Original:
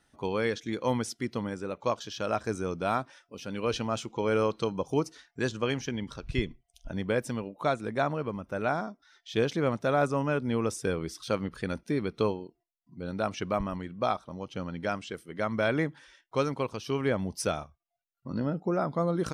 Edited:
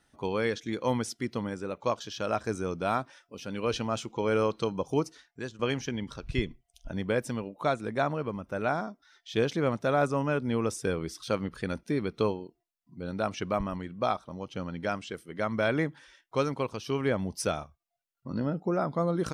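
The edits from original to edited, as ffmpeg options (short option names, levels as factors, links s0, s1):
-filter_complex "[0:a]asplit=2[s0][s1];[s0]atrim=end=5.59,asetpts=PTS-STARTPTS,afade=t=out:st=5.01:d=0.58:silence=0.211349[s2];[s1]atrim=start=5.59,asetpts=PTS-STARTPTS,afade=t=in:d=0.004:c=hsin:silence=0.211349[s3];[s2][s3]concat=n=2:v=0:a=1"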